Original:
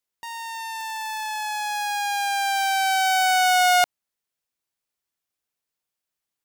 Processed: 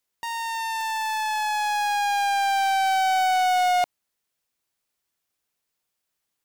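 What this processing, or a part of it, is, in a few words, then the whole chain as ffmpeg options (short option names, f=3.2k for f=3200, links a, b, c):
saturation between pre-emphasis and de-emphasis: -af "highshelf=f=7.2k:g=10.5,asoftclip=type=tanh:threshold=-23.5dB,highshelf=f=7.2k:g=-10.5,volume=5dB"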